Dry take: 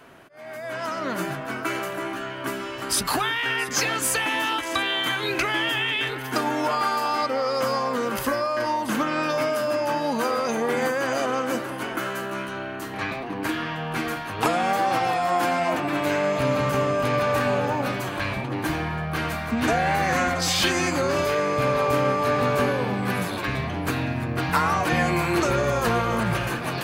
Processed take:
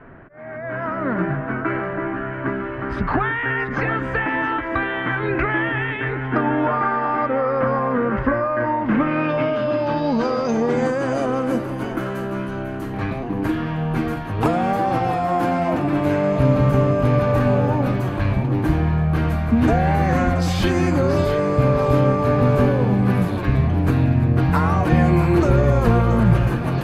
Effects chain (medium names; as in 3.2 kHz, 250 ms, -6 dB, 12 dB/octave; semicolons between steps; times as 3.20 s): tilt EQ -4 dB/octave; feedback echo behind a high-pass 679 ms, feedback 47%, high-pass 1.9 kHz, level -11 dB; low-pass sweep 1.8 kHz -> 13 kHz, 8.71–11.70 s